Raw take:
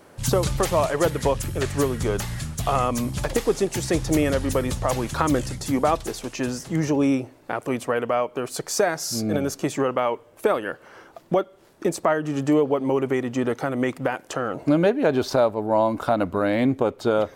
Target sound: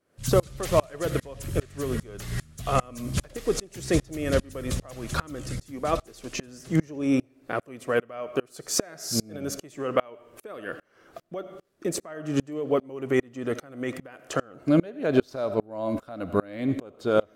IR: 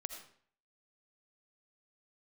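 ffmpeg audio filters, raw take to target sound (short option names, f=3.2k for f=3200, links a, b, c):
-filter_complex "[0:a]equalizer=f=880:w=4:g=-10,asplit=2[a][b];[1:a]atrim=start_sample=2205[c];[b][c]afir=irnorm=-1:irlink=0,volume=-5dB[d];[a][d]amix=inputs=2:normalize=0,aeval=exprs='val(0)*pow(10,-31*if(lt(mod(-2.5*n/s,1),2*abs(-2.5)/1000),1-mod(-2.5*n/s,1)/(2*abs(-2.5)/1000),(mod(-2.5*n/s,1)-2*abs(-2.5)/1000)/(1-2*abs(-2.5)/1000))/20)':c=same,volume=1.5dB"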